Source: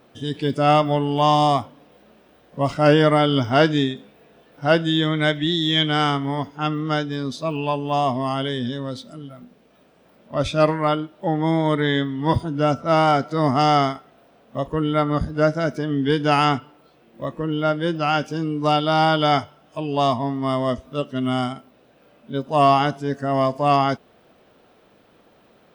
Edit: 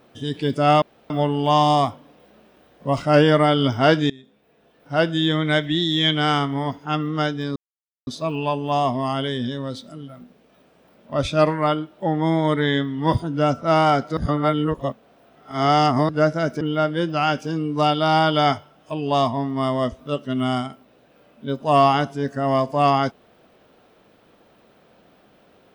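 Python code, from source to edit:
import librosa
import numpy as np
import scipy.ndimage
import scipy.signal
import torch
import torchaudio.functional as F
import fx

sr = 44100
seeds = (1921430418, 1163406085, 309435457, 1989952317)

y = fx.edit(x, sr, fx.insert_room_tone(at_s=0.82, length_s=0.28),
    fx.fade_in_from(start_s=3.82, length_s=1.19, floor_db=-24.0),
    fx.insert_silence(at_s=7.28, length_s=0.51),
    fx.reverse_span(start_s=13.38, length_s=1.92),
    fx.cut(start_s=15.82, length_s=1.65), tone=tone)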